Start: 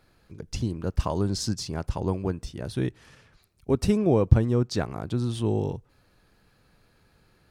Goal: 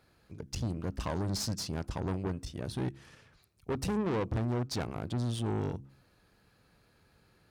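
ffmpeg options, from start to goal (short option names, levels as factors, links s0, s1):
-af "aeval=exprs='(tanh(25.1*val(0)+0.6)-tanh(0.6))/25.1':c=same,highpass=41,bandreject=f=67.41:t=h:w=4,bandreject=f=134.82:t=h:w=4,bandreject=f=202.23:t=h:w=4,bandreject=f=269.64:t=h:w=4,bandreject=f=337.05:t=h:w=4"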